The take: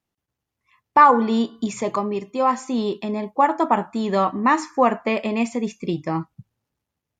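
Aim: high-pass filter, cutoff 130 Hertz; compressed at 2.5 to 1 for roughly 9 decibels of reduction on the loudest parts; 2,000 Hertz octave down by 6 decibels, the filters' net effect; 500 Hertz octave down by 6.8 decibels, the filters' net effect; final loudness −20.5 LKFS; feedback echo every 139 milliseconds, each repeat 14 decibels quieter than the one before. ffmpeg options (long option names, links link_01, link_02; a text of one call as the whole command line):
ffmpeg -i in.wav -af "highpass=130,equalizer=frequency=500:width_type=o:gain=-8,equalizer=frequency=2000:width_type=o:gain=-7.5,acompressor=threshold=-25dB:ratio=2.5,aecho=1:1:139|278:0.2|0.0399,volume=8.5dB" out.wav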